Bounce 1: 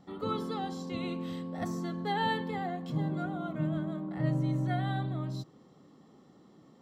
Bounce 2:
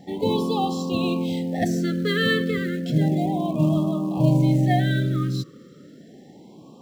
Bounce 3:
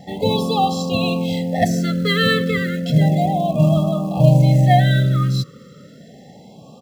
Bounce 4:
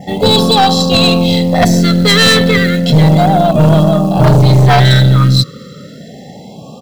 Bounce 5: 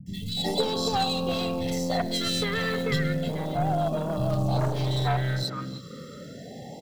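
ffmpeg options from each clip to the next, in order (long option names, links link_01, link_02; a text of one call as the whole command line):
ffmpeg -i in.wav -filter_complex "[0:a]lowshelf=frequency=62:gain=-9,asplit=2[link_01][link_02];[link_02]acrusher=bits=5:mode=log:mix=0:aa=0.000001,volume=-5.5dB[link_03];[link_01][link_03]amix=inputs=2:normalize=0,afftfilt=real='re*(1-between(b*sr/1024,790*pow(1800/790,0.5+0.5*sin(2*PI*0.32*pts/sr))/1.41,790*pow(1800/790,0.5+0.5*sin(2*PI*0.32*pts/sr))*1.41))':imag='im*(1-between(b*sr/1024,790*pow(1800/790,0.5+0.5*sin(2*PI*0.32*pts/sr))/1.41,790*pow(1800/790,0.5+0.5*sin(2*PI*0.32*pts/sr))*1.41))':win_size=1024:overlap=0.75,volume=9dB" out.wav
ffmpeg -i in.wav -af "aecho=1:1:1.5:0.74,volume=4.5dB" out.wav
ffmpeg -i in.wav -af "adynamicequalizer=threshold=0.00708:dfrequency=4100:dqfactor=3.4:tfrequency=4100:tqfactor=3.4:attack=5:release=100:ratio=0.375:range=4:mode=boostabove:tftype=bell,aeval=exprs='0.891*(cos(1*acos(clip(val(0)/0.891,-1,1)))-cos(1*PI/2))+0.316*(cos(5*acos(clip(val(0)/0.891,-1,1)))-cos(5*PI/2))+0.158*(cos(6*acos(clip(val(0)/0.891,-1,1)))-cos(6*PI/2))':channel_layout=same,apsyclip=3.5dB,volume=-1.5dB" out.wav
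ffmpeg -i in.wav -filter_complex "[0:a]acompressor=threshold=-14dB:ratio=10,acrossover=split=190|2700[link_01][link_02][link_03];[link_03]adelay=60[link_04];[link_02]adelay=370[link_05];[link_01][link_05][link_04]amix=inputs=3:normalize=0,volume=-7.5dB" out.wav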